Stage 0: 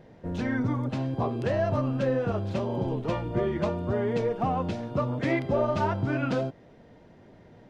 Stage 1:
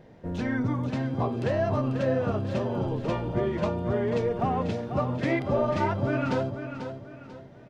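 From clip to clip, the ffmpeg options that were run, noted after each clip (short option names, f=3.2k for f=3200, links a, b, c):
-af "aecho=1:1:492|984|1476|1968:0.355|0.124|0.0435|0.0152"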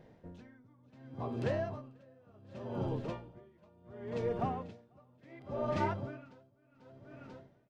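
-af "aeval=exprs='val(0)*pow(10,-30*(0.5-0.5*cos(2*PI*0.69*n/s))/20)':c=same,volume=-6dB"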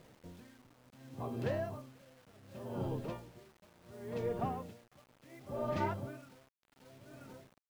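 -af "acrusher=bits=9:mix=0:aa=0.000001,volume=-2dB"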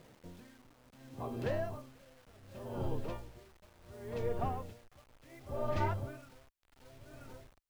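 -af "asubboost=boost=11.5:cutoff=52,volume=1dB"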